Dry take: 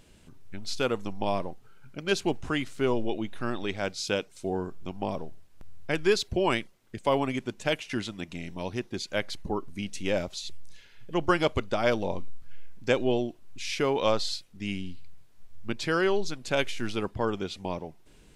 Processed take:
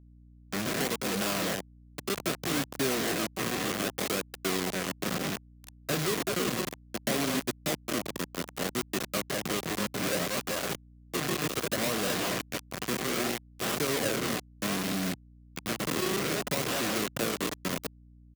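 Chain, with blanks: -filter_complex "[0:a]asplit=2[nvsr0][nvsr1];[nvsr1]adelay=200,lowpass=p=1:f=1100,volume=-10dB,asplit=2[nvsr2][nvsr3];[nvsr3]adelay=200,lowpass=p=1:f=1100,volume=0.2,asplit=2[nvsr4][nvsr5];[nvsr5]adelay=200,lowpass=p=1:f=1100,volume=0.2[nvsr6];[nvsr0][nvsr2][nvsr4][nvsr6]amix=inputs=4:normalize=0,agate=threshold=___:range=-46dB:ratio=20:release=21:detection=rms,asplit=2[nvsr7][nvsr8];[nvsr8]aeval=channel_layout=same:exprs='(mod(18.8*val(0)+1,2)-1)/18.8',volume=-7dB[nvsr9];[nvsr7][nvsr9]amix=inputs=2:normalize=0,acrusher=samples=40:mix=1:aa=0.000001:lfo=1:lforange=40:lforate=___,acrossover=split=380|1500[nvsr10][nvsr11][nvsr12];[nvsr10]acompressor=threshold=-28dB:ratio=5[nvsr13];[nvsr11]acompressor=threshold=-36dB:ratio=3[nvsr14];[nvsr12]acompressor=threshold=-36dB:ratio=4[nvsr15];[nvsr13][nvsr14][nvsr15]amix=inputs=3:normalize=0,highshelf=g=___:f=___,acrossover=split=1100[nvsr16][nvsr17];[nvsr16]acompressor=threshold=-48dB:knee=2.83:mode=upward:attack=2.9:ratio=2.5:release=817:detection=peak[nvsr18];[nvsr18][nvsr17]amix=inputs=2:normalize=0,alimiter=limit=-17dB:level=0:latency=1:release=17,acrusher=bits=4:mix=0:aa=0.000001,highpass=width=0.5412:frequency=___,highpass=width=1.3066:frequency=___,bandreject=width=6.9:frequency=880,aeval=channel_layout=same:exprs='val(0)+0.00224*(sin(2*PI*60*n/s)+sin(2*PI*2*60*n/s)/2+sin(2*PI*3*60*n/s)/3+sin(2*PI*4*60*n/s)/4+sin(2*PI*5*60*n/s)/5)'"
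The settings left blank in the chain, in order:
-37dB, 0.64, 7, 5200, 130, 130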